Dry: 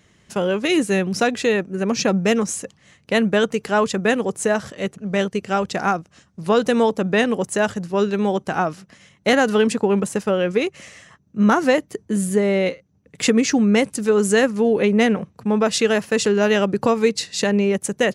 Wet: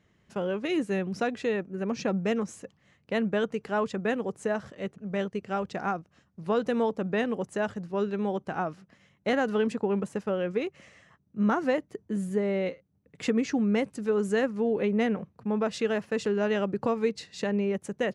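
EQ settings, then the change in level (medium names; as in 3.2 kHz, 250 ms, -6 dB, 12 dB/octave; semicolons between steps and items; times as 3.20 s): low-pass 2.1 kHz 6 dB/octave; -9.0 dB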